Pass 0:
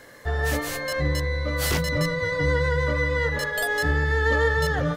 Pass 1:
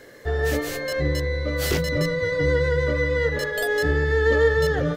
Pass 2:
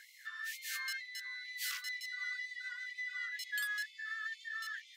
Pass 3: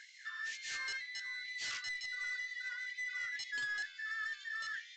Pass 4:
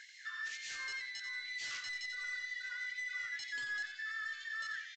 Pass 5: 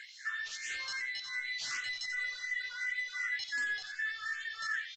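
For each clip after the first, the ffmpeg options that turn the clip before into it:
-af "equalizer=f=400:t=o:w=0.67:g=8,equalizer=f=1000:t=o:w=0.67:g=-6,equalizer=f=10000:t=o:w=0.67:g=-4"
-af "acompressor=threshold=0.0501:ratio=6,afftfilt=real='re*gte(b*sr/1024,1000*pow(2000/1000,0.5+0.5*sin(2*PI*2.1*pts/sr)))':imag='im*gte(b*sr/1024,1000*pow(2000/1000,0.5+0.5*sin(2*PI*2.1*pts/sr)))':win_size=1024:overlap=0.75,volume=0.596"
-af "aresample=16000,asoftclip=type=tanh:threshold=0.0141,aresample=44100,flanger=delay=9:depth=6.6:regen=88:speed=0.56:shape=triangular,volume=2.24"
-af "alimiter=level_in=4.47:limit=0.0631:level=0:latency=1,volume=0.224,aecho=1:1:90|180|270:0.355|0.103|0.0298,volume=1.12"
-filter_complex "[0:a]asplit=2[s0][s1];[s1]afreqshift=2.7[s2];[s0][s2]amix=inputs=2:normalize=1,volume=2.37"

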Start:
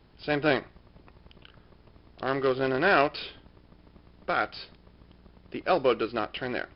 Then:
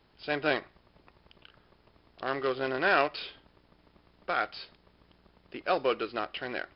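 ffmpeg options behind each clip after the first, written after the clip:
-af "lowshelf=f=330:g=-9,volume=0.841"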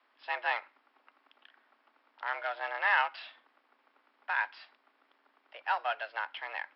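-filter_complex "[0:a]acrossover=split=570 2800:gain=0.158 1 0.126[s0][s1][s2];[s0][s1][s2]amix=inputs=3:normalize=0,afreqshift=220"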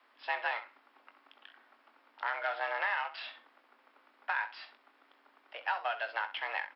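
-filter_complex "[0:a]acompressor=threshold=0.0224:ratio=12,asplit=2[s0][s1];[s1]aecho=0:1:21|65:0.316|0.211[s2];[s0][s2]amix=inputs=2:normalize=0,volume=1.5"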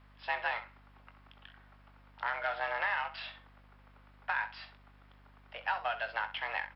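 -af "aeval=exprs='val(0)+0.00112*(sin(2*PI*50*n/s)+sin(2*PI*2*50*n/s)/2+sin(2*PI*3*50*n/s)/3+sin(2*PI*4*50*n/s)/4+sin(2*PI*5*50*n/s)/5)':c=same"

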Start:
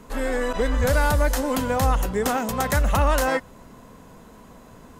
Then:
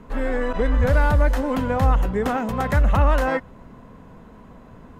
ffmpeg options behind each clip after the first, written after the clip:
-af "bass=f=250:g=4,treble=f=4000:g=-15"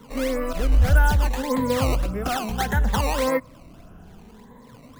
-filter_complex "[0:a]afftfilt=real='re*pow(10,13/40*sin(2*PI*(0.99*log(max(b,1)*sr/1024/100)/log(2)-(0.64)*(pts-256)/sr)))':imag='im*pow(10,13/40*sin(2*PI*(0.99*log(max(b,1)*sr/1024/100)/log(2)-(0.64)*(pts-256)/sr)))':win_size=1024:overlap=0.75,acrossover=split=180|350|1700[s0][s1][s2][s3];[s2]acrusher=samples=15:mix=1:aa=0.000001:lfo=1:lforange=24:lforate=1.7[s4];[s0][s1][s4][s3]amix=inputs=4:normalize=0,volume=0.668"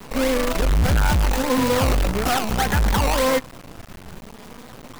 -af "acrusher=bits=5:dc=4:mix=0:aa=0.000001,asoftclip=type=tanh:threshold=0.0668,volume=2.66"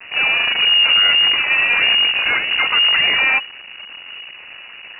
-af "lowpass=f=2500:t=q:w=0.5098,lowpass=f=2500:t=q:w=0.6013,lowpass=f=2500:t=q:w=0.9,lowpass=f=2500:t=q:w=2.563,afreqshift=-2900,volume=1.5"

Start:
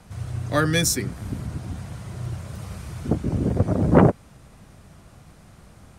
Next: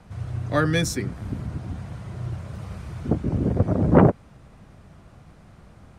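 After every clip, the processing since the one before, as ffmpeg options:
-af "lowpass=f=2700:p=1"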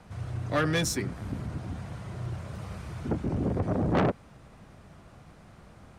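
-af "asoftclip=type=tanh:threshold=0.112,lowshelf=f=210:g=-5"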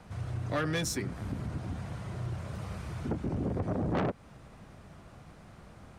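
-af "acompressor=threshold=0.0251:ratio=2"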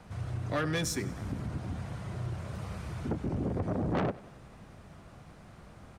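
-af "aecho=1:1:96|192|288|384|480:0.106|0.0614|0.0356|0.0207|0.012"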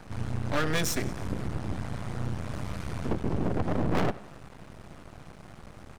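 -af "aeval=exprs='max(val(0),0)':c=same,volume=2.51"

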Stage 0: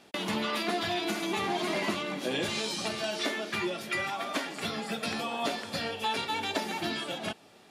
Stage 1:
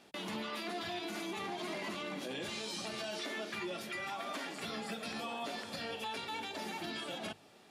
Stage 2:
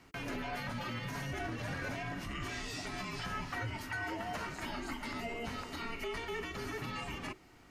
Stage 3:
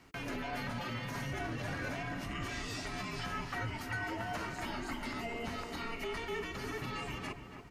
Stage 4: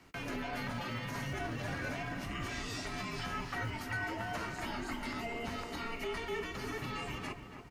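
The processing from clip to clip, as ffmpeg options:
-af "alimiter=level_in=1.5:limit=0.0631:level=0:latency=1:release=67,volume=0.668,bandreject=f=50:t=h:w=6,bandreject=f=100:t=h:w=6,bandreject=f=150:t=h:w=6,volume=0.631"
-af "equalizer=f=250:t=o:w=0.67:g=-7,equalizer=f=630:t=o:w=0.67:g=-8,equalizer=f=4000:t=o:w=0.67:g=-10,equalizer=f=10000:t=o:w=0.67:g=-9,afreqshift=-470,volume=1.78"
-filter_complex "[0:a]asplit=2[s0][s1];[s1]adelay=282,lowpass=f=1900:p=1,volume=0.398,asplit=2[s2][s3];[s3]adelay=282,lowpass=f=1900:p=1,volume=0.5,asplit=2[s4][s5];[s5]adelay=282,lowpass=f=1900:p=1,volume=0.5,asplit=2[s6][s7];[s7]adelay=282,lowpass=f=1900:p=1,volume=0.5,asplit=2[s8][s9];[s9]adelay=282,lowpass=f=1900:p=1,volume=0.5,asplit=2[s10][s11];[s11]adelay=282,lowpass=f=1900:p=1,volume=0.5[s12];[s0][s2][s4][s6][s8][s10][s12]amix=inputs=7:normalize=0"
-filter_complex "[0:a]acrossover=split=160[s0][s1];[s0]acrusher=bits=4:mode=log:mix=0:aa=0.000001[s2];[s1]asplit=2[s3][s4];[s4]adelay=20,volume=0.211[s5];[s3][s5]amix=inputs=2:normalize=0[s6];[s2][s6]amix=inputs=2:normalize=0"

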